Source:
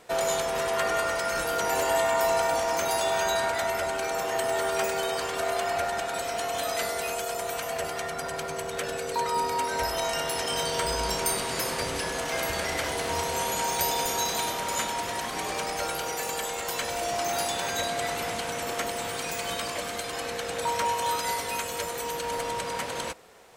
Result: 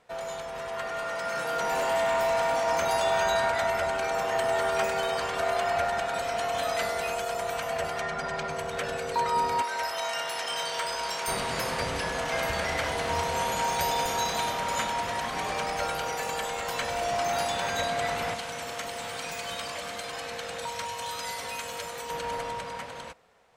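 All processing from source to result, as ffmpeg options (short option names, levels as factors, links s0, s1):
-filter_complex "[0:a]asettb=1/sr,asplit=3[s0][s1][s2];[s0]atrim=end=0.814[s3];[s1]atrim=start=0.81:end=2.67,asetpts=PTS-STARTPTS,afade=t=in:d=0.004:c=qsin,afade=t=out:st=1.856:d=0.004:c=qsin,highpass=f=130:w=0.5412,highpass=f=130:w=1.3066,volume=15,asoftclip=hard,volume=0.0668[s4];[s2]atrim=start=2.666[s5];[s3][s4]acrossfade=d=0.004:c1=hsin:c2=qsin[s6];[s6][s5]acrossfade=d=0.004:c1=qsin:c2=hsin,asettb=1/sr,asplit=3[s7][s8][s9];[s7]atrim=end=8.014[s10];[s8]atrim=start=8.01:end=8.5,asetpts=PTS-STARTPTS,afade=t=in:d=0.004:c=qsin,afade=t=out:st=0.486:d=0.004:c=qsin,lowpass=7300,aecho=1:1:4.9:0.39,atrim=end_sample=21609[s11];[s9]atrim=start=8.496[s12];[s10][s11]acrossfade=d=0.004:c1=hsin:c2=qsin[s13];[s13][s12]acrossfade=d=0.004:c1=qsin:c2=hsin,asettb=1/sr,asplit=3[s14][s15][s16];[s14]atrim=end=9.624[s17];[s15]atrim=start=9.62:end=11.28,asetpts=PTS-STARTPTS,afade=t=in:d=0.004:c=qsin,afade=t=out:st=1.656:d=0.004:c=qsin,highpass=f=980:p=1,volume=14.1,asoftclip=hard,volume=0.0708[s18];[s16]atrim=start=11.276[s19];[s17][s18]acrossfade=d=0.004:c1=hsin:c2=qsin[s20];[s20][s19]acrossfade=d=0.004:c1=qsin:c2=hsin,asettb=1/sr,asplit=3[s21][s22][s23];[s21]atrim=end=18.344[s24];[s22]atrim=start=18.34:end=22.1,asetpts=PTS-STARTPTS,afade=t=in:d=0.004:c=qsin,afade=t=out:st=3.756:d=0.004:c=qsin,lowshelf=f=150:g=-10,acrossover=split=150|3000[s25][s26][s27];[s26]acompressor=threshold=0.0158:ratio=3:attack=3.2:release=140:knee=2.83:detection=peak[s28];[s25][s28][s27]amix=inputs=3:normalize=0,asplit=2[s29][s30];[s30]adelay=44,volume=0.251[s31];[s29][s31]amix=inputs=2:normalize=0,atrim=end_sample=165816[s32];[s23]atrim=start=22.096[s33];[s24][s32]acrossfade=d=0.004:c1=hsin:c2=qsin[s34];[s34][s33]acrossfade=d=0.004:c1=qsin:c2=hsin,lowpass=f=3100:p=1,equalizer=f=350:t=o:w=0.66:g=-7.5,dynaudnorm=f=120:g=21:m=3.16,volume=0.422"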